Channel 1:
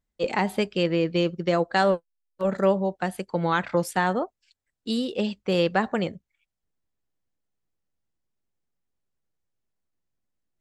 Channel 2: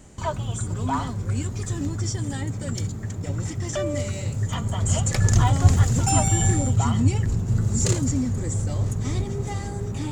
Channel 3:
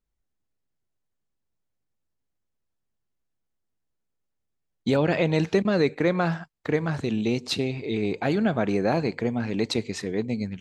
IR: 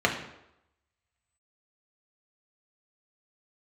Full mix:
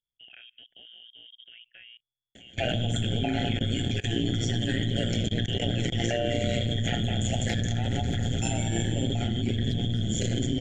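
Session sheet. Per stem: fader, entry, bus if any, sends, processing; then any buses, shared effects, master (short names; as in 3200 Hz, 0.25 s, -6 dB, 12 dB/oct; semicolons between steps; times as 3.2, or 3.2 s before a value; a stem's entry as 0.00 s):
-7.5 dB, 0.00 s, bus A, no send, Wiener smoothing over 15 samples
+1.5 dB, 2.35 s, bus A, send -4.5 dB, low shelf 130 Hz -6.5 dB
-8.5 dB, 0.00 s, no bus, no send, dry
bus A: 0.0 dB, inverted band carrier 3400 Hz; compressor 4:1, threshold -24 dBFS, peak gain reduction 12 dB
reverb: on, RT60 0.85 s, pre-delay 3 ms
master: elliptic band-stop 720–1500 Hz, stop band 40 dB; level quantiser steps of 23 dB; AM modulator 120 Hz, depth 70%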